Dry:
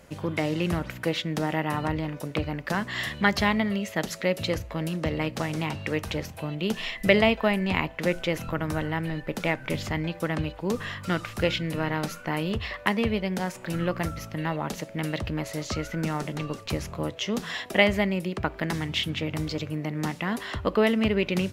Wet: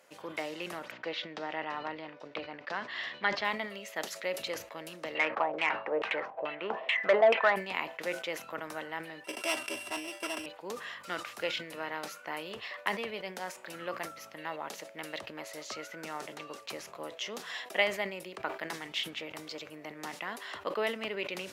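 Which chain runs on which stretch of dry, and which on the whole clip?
0.91–3.45 LPF 4900 Hz 24 dB/oct + mismatched tape noise reduction decoder only
5.15–7.56 LFO low-pass saw down 2.3 Hz 500–3000 Hz + overdrive pedal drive 15 dB, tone 3300 Hz, clips at -5.5 dBFS
9.24–10.46 sample sorter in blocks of 16 samples + LPF 11000 Hz + comb 3 ms, depth 85%
whole clip: HPF 500 Hz 12 dB/oct; sustainer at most 120 dB/s; gain -6.5 dB

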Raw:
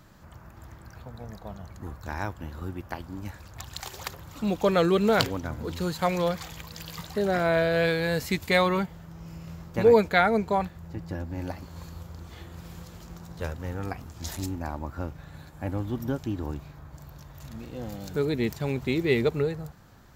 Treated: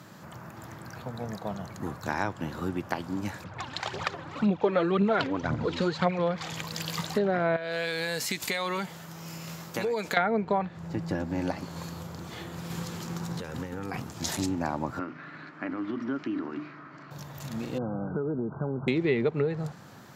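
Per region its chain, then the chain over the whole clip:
3.44–6.19 low-pass opened by the level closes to 2200 Hz, open at -20.5 dBFS + phaser 1.9 Hz, delay 4 ms, feedback 55%
7.56–10.17 tilt +2.5 dB/oct + compressor 5:1, threshold -33 dBFS
12.7–14 bell 640 Hz -7.5 dB 0.25 oct + negative-ratio compressor -38 dBFS
14.99–17.11 notches 50/100/150/200/250/300/350 Hz + compressor 4:1, threshold -32 dBFS + speaker cabinet 270–4100 Hz, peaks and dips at 290 Hz +6 dB, 510 Hz -10 dB, 820 Hz -10 dB, 1300 Hz +7 dB, 2000 Hz +5 dB, 3600 Hz -9 dB
17.78–18.88 compressor 12:1, threshold -32 dBFS + brick-wall FIR low-pass 1600 Hz
whole clip: HPF 120 Hz 24 dB/oct; treble ducked by the level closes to 2600 Hz, closed at -21.5 dBFS; compressor 3:1, threshold -32 dBFS; gain +7 dB

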